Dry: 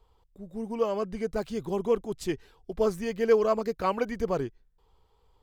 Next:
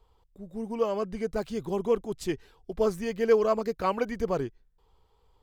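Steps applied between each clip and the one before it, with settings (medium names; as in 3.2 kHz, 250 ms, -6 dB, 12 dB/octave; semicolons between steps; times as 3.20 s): no audible change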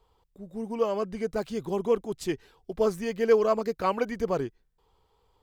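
bass shelf 68 Hz -8.5 dB; trim +1 dB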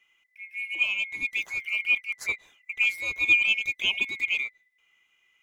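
split-band scrambler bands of 2 kHz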